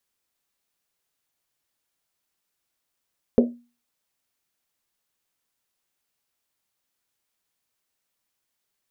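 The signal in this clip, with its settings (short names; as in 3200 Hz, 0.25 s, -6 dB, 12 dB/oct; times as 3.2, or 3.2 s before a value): Risset drum, pitch 240 Hz, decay 0.34 s, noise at 470 Hz, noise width 280 Hz, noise 40%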